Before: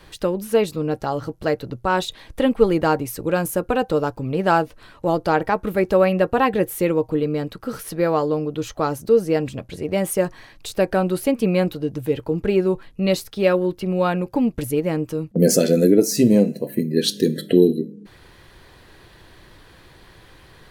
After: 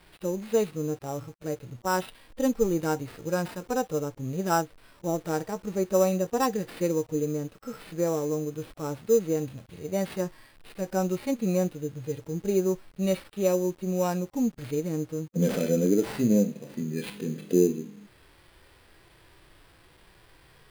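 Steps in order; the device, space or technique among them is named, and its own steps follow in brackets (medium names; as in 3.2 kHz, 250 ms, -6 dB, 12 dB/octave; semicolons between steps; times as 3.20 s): early 8-bit sampler (sample-rate reducer 6.6 kHz, jitter 0%; bit crusher 8-bit); harmonic-percussive split percussive -15 dB; trim -6 dB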